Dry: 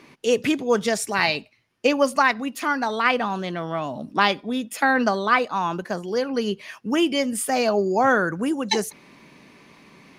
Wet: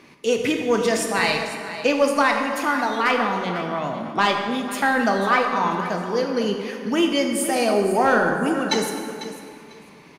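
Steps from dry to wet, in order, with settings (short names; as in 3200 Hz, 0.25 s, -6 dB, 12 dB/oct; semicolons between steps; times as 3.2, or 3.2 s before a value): soft clip -8.5 dBFS, distortion -21 dB; feedback echo 0.497 s, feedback 18%, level -13.5 dB; plate-style reverb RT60 2.1 s, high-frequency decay 0.6×, DRR 2.5 dB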